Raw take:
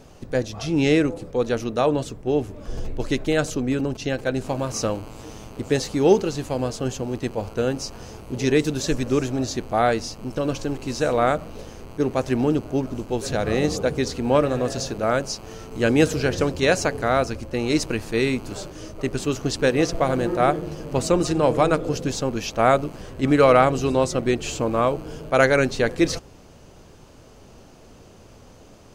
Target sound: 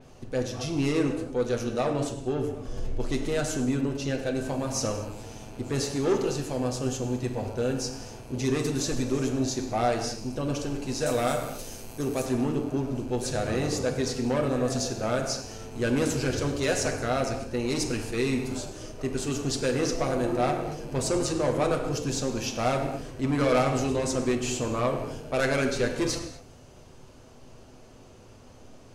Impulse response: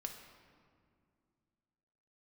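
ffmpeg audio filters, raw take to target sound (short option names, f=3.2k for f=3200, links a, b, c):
-filter_complex "[0:a]asettb=1/sr,asplit=3[a][b][c];[a]atrim=end=11.064[d];[b]atrim=start=11.06:end=12.26,asetpts=PTS-STARTPTS,afade=t=in:d=0.004:c=qsin,afade=t=out:st=1.196:d=0.004:c=qsin,aemphasis=mode=production:type=75fm[e];[c]atrim=start=12.256[f];[d][e]acrossfade=d=0.004:c1=hsin:c2=qsin[g];[g][f]acrossfade=d=0.004:c1=qsin:c2=hsin,asoftclip=type=tanh:threshold=-16dB[h];[1:a]atrim=start_sample=2205,atrim=end_sample=6174,asetrate=24255,aresample=44100[i];[h][i]afir=irnorm=-1:irlink=0,adynamicequalizer=threshold=0.00891:dfrequency=4900:dqfactor=0.7:tfrequency=4900:tqfactor=0.7:attack=5:release=100:ratio=0.375:range=2.5:mode=boostabove:tftype=highshelf,volume=-4.5dB"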